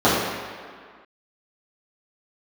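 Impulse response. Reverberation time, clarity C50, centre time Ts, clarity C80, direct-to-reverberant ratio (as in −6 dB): 1.9 s, −0.5 dB, 98 ms, 1.5 dB, −12.0 dB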